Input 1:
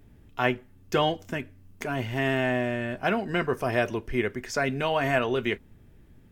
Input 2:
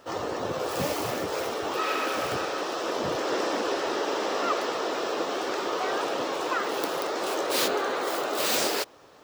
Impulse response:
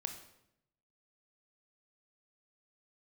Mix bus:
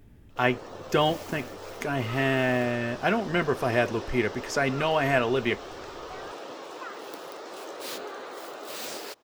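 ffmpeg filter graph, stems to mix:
-filter_complex "[0:a]volume=1dB[link_01];[1:a]adelay=300,volume=-11dB[link_02];[link_01][link_02]amix=inputs=2:normalize=0"

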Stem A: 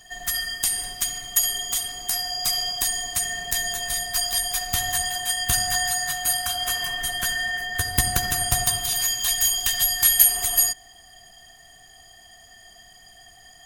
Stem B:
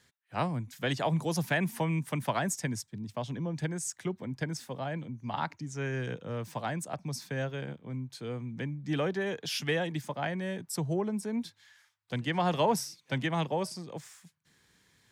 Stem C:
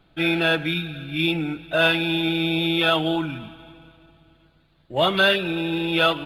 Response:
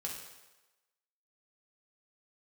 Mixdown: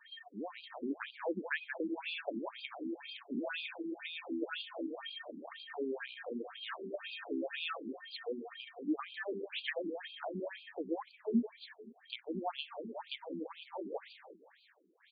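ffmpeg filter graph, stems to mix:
-filter_complex "[0:a]highshelf=frequency=4000:gain=7.5,volume=-9dB[link_01];[1:a]bandreject=frequency=50:width_type=h:width=6,bandreject=frequency=100:width_type=h:width=6,bandreject=frequency=150:width_type=h:width=6,bandreject=frequency=200:width_type=h:width=6,bandreject=frequency=250:width_type=h:width=6,acontrast=53,volume=0dB,asplit=3[link_02][link_03][link_04];[link_03]volume=-10dB[link_05];[2:a]adelay=1650,volume=-10dB,asplit=2[link_06][link_07];[link_07]volume=-24dB[link_08];[link_04]apad=whole_len=602260[link_09];[link_01][link_09]sidechaincompress=threshold=-34dB:ratio=8:attack=16:release=227[link_10];[link_05][link_08]amix=inputs=2:normalize=0,aecho=0:1:178|356|534|712|890|1068|1246:1|0.47|0.221|0.104|0.0488|0.0229|0.0108[link_11];[link_10][link_02][link_06][link_11]amix=inputs=4:normalize=0,acrossover=split=230[link_12][link_13];[link_13]acompressor=threshold=-33dB:ratio=3[link_14];[link_12][link_14]amix=inputs=2:normalize=0,afftfilt=real='re*between(b*sr/1024,290*pow(3400/290,0.5+0.5*sin(2*PI*2*pts/sr))/1.41,290*pow(3400/290,0.5+0.5*sin(2*PI*2*pts/sr))*1.41)':imag='im*between(b*sr/1024,290*pow(3400/290,0.5+0.5*sin(2*PI*2*pts/sr))/1.41,290*pow(3400/290,0.5+0.5*sin(2*PI*2*pts/sr))*1.41)':win_size=1024:overlap=0.75"

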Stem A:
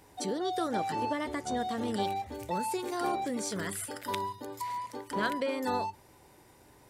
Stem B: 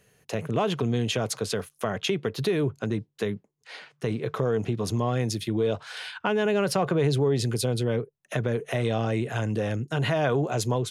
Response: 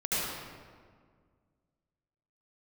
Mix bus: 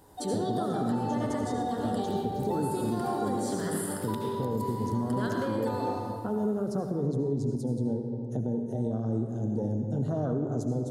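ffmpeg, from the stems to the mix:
-filter_complex "[0:a]equalizer=frequency=5900:width=2.7:gain=-7.5,volume=-1dB,asplit=2[link_01][link_02];[link_02]volume=-5.5dB[link_03];[1:a]equalizer=frequency=100:width_type=o:width=0.67:gain=4,equalizer=frequency=250:width_type=o:width=0.67:gain=11,equalizer=frequency=1000:width_type=o:width=0.67:gain=-5,equalizer=frequency=2500:width_type=o:width=0.67:gain=-9,equalizer=frequency=6300:width_type=o:width=0.67:gain=7,afwtdn=0.0447,equalizer=frequency=8400:width=0.85:gain=6.5,volume=-7.5dB,asplit=2[link_04][link_05];[link_05]volume=-12.5dB[link_06];[2:a]atrim=start_sample=2205[link_07];[link_03][link_06]amix=inputs=2:normalize=0[link_08];[link_08][link_07]afir=irnorm=-1:irlink=0[link_09];[link_01][link_04][link_09]amix=inputs=3:normalize=0,equalizer=frequency=2300:width_type=o:width=0.59:gain=-14,alimiter=limit=-20dB:level=0:latency=1:release=400"

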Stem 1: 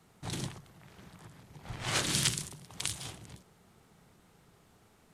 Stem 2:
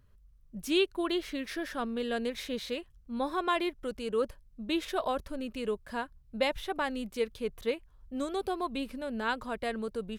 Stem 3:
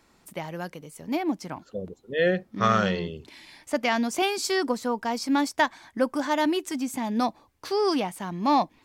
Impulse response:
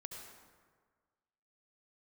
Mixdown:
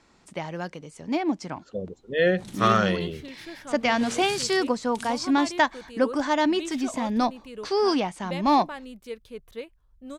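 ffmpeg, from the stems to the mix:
-filter_complex "[0:a]adelay=2150,volume=-8dB[link_01];[1:a]adelay=1900,volume=-5.5dB[link_02];[2:a]lowpass=frequency=8100:width=0.5412,lowpass=frequency=8100:width=1.3066,volume=1.5dB[link_03];[link_01][link_02][link_03]amix=inputs=3:normalize=0,asoftclip=type=hard:threshold=-8.5dB"

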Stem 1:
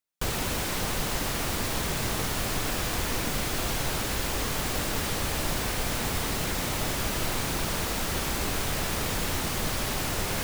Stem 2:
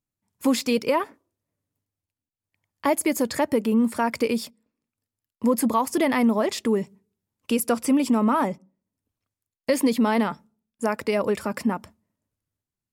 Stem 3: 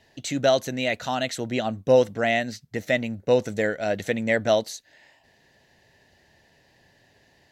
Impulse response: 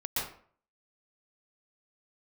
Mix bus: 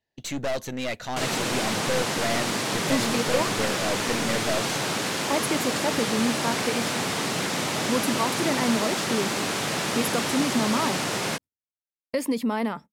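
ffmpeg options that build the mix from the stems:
-filter_complex "[0:a]lowpass=8700,dynaudnorm=framelen=130:gausssize=3:maxgain=11dB,highpass=frequency=140:width=0.5412,highpass=frequency=140:width=1.3066,adelay=950,volume=-6.5dB[link_01];[1:a]adelay=2450,volume=-5dB[link_02];[2:a]aeval=exprs='(tanh(20*val(0)+0.55)-tanh(0.55))/20':channel_layout=same,volume=1dB[link_03];[link_01][link_02][link_03]amix=inputs=3:normalize=0,agate=range=-23dB:threshold=-42dB:ratio=16:detection=peak"

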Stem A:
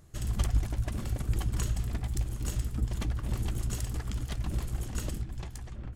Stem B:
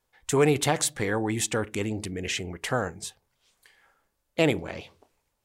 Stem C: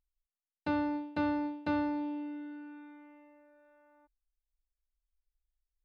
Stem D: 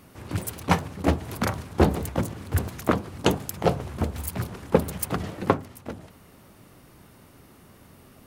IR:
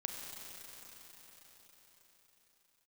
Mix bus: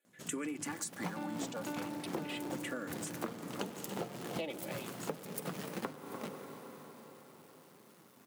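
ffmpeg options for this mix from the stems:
-filter_complex "[0:a]aeval=exprs='abs(val(0))':channel_layout=same,adelay=50,volume=-5dB[link_01];[1:a]aecho=1:1:3.5:0.68,asplit=2[link_02][link_03];[link_03]afreqshift=-0.4[link_04];[link_02][link_04]amix=inputs=2:normalize=1,volume=-3.5dB[link_05];[2:a]adelay=500,volume=-1.5dB[link_06];[3:a]lowshelf=frequency=390:gain=3,acrusher=bits=6:dc=4:mix=0:aa=0.000001,flanger=delay=4.2:depth=4.9:regen=52:speed=1.2:shape=triangular,adelay=350,volume=-7dB,asplit=3[link_07][link_08][link_09];[link_08]volume=-4.5dB[link_10];[link_09]volume=-15dB[link_11];[4:a]atrim=start_sample=2205[link_12];[link_10][link_12]afir=irnorm=-1:irlink=0[link_13];[link_11]aecho=0:1:296:1[link_14];[link_01][link_05][link_06][link_07][link_13][link_14]amix=inputs=6:normalize=0,highpass=frequency=160:width=0.5412,highpass=frequency=160:width=1.3066,acompressor=threshold=-36dB:ratio=10"

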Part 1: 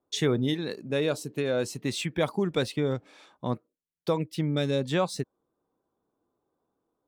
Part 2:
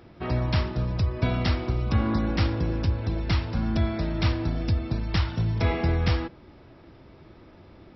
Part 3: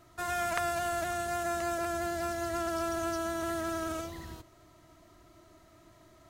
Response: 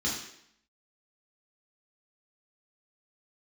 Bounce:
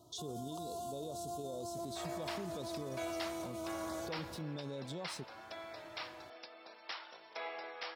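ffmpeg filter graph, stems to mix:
-filter_complex "[0:a]acompressor=threshold=-27dB:ratio=2.5,volume=-7dB,asplit=2[link_01][link_02];[1:a]highpass=frequency=540:width=0.5412,highpass=frequency=540:width=1.3066,adelay=1750,volume=-11.5dB[link_03];[2:a]volume=-1dB[link_04];[link_02]apad=whole_len=277795[link_05];[link_04][link_05]sidechaincompress=threshold=-40dB:ratio=4:attack=22:release=513[link_06];[link_01][link_06]amix=inputs=2:normalize=0,asuperstop=centerf=1900:order=8:qfactor=0.84,alimiter=level_in=11dB:limit=-24dB:level=0:latency=1:release=22,volume=-11dB,volume=0dB[link_07];[link_03][link_07]amix=inputs=2:normalize=0,highpass=89"

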